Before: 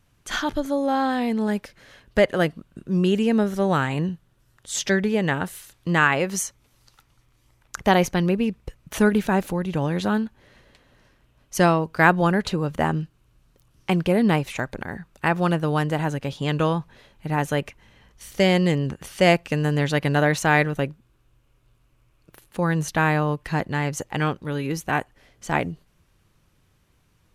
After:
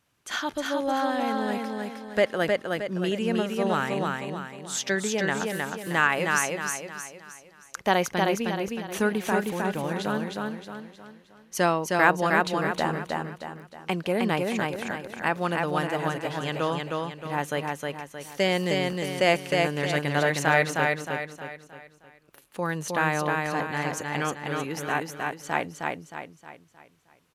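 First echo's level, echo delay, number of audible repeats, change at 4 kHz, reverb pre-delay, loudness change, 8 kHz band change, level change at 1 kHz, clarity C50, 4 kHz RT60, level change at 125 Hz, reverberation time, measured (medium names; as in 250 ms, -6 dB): -3.0 dB, 312 ms, 5, -1.0 dB, no reverb, -4.0 dB, -1.0 dB, -1.5 dB, no reverb, no reverb, -8.5 dB, no reverb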